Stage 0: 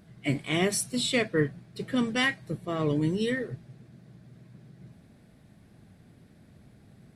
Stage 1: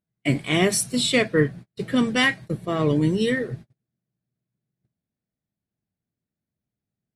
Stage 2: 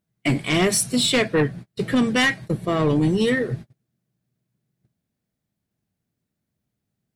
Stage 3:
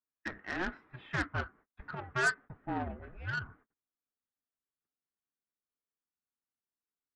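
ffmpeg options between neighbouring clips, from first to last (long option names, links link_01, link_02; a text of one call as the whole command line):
ffmpeg -i in.wav -af "agate=range=-38dB:threshold=-42dB:ratio=16:detection=peak,volume=6dB" out.wav
ffmpeg -i in.wav -filter_complex "[0:a]asplit=2[link_01][link_02];[link_02]acompressor=threshold=-29dB:ratio=6,volume=0dB[link_03];[link_01][link_03]amix=inputs=2:normalize=0,aeval=exprs='0.631*sin(PI/2*2*val(0)/0.631)':channel_layout=same,volume=-9dB" out.wav
ffmpeg -i in.wav -af "highpass=frequency=550:width_type=q:width=0.5412,highpass=frequency=550:width_type=q:width=1.307,lowpass=frequency=2100:width_type=q:width=0.5176,lowpass=frequency=2100:width_type=q:width=0.7071,lowpass=frequency=2100:width_type=q:width=1.932,afreqshift=-370,aeval=exprs='0.266*(cos(1*acos(clip(val(0)/0.266,-1,1)))-cos(1*PI/2))+0.015*(cos(7*acos(clip(val(0)/0.266,-1,1)))-cos(7*PI/2))':channel_layout=same,crystalizer=i=3.5:c=0,volume=-9dB" out.wav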